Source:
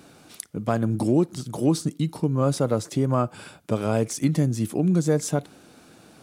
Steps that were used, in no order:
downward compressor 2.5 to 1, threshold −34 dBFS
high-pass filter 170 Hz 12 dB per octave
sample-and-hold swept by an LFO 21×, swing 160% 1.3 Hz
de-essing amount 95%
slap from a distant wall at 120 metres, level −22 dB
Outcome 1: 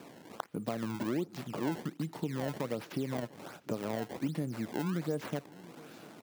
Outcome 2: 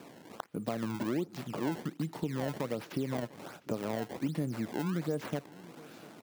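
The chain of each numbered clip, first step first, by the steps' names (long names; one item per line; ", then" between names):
downward compressor, then sample-and-hold swept by an LFO, then high-pass filter, then de-essing, then slap from a distant wall
sample-and-hold swept by an LFO, then high-pass filter, then downward compressor, then slap from a distant wall, then de-essing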